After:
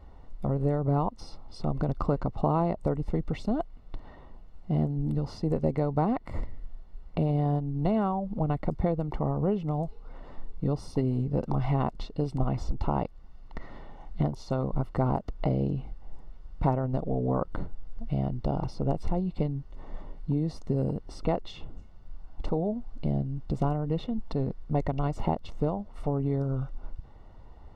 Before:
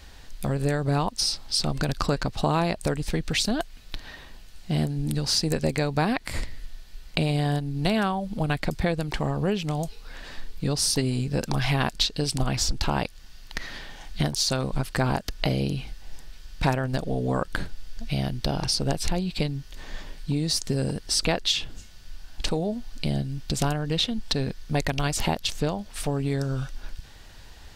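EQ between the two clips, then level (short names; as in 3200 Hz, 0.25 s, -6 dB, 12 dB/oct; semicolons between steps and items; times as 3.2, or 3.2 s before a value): polynomial smoothing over 65 samples; -1.5 dB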